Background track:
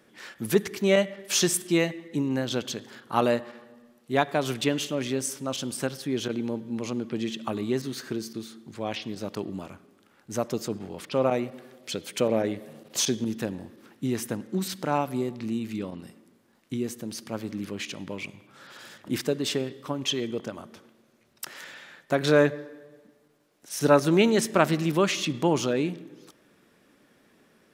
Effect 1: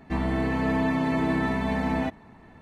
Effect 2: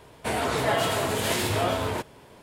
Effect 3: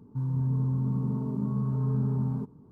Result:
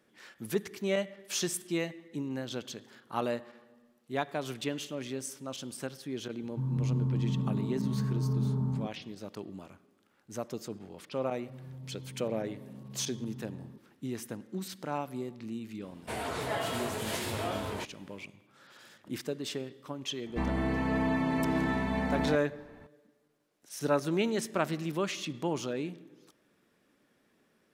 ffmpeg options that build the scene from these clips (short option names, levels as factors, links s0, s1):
-filter_complex "[3:a]asplit=2[s0][s1];[0:a]volume=0.355[s2];[s0]atrim=end=2.71,asetpts=PTS-STARTPTS,volume=0.75,afade=t=in:d=0.004:c=hsin,afade=t=out:st=2.706:d=0.004:c=hsin,adelay=283122S[s3];[s1]atrim=end=2.71,asetpts=PTS-STARTPTS,volume=0.126,afade=t=in:d=0.004:c=hsin,afade=t=out:st=2.706:d=0.004:c=hsin,adelay=11330[s4];[2:a]atrim=end=2.42,asetpts=PTS-STARTPTS,volume=0.355,afade=t=in:d=0.004:c=hsin,afade=t=out:st=2.416:d=0.004:c=hsin,adelay=15830[s5];[1:a]atrim=end=2.61,asetpts=PTS-STARTPTS,volume=0.596,afade=t=in:d=0.004:c=hsin,afade=t=out:st=2.606:d=0.004:c=hsin,adelay=20260[s6];[s2][s3][s4][s5][s6]amix=inputs=5:normalize=0"